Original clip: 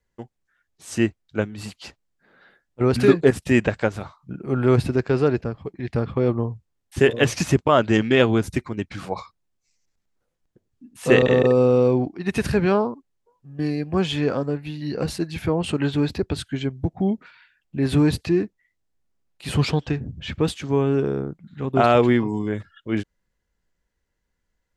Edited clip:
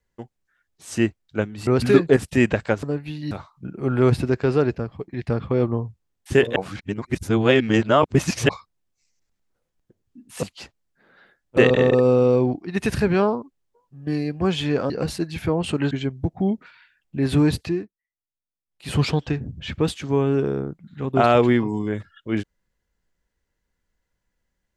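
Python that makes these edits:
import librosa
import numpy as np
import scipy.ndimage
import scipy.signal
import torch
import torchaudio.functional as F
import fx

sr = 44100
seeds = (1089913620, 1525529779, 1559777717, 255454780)

y = fx.edit(x, sr, fx.move(start_s=1.67, length_s=1.14, to_s=11.09),
    fx.reverse_span(start_s=7.22, length_s=1.93),
    fx.move(start_s=14.42, length_s=0.48, to_s=3.97),
    fx.cut(start_s=15.91, length_s=0.6),
    fx.fade_down_up(start_s=18.21, length_s=1.34, db=-21.5, fade_s=0.29), tone=tone)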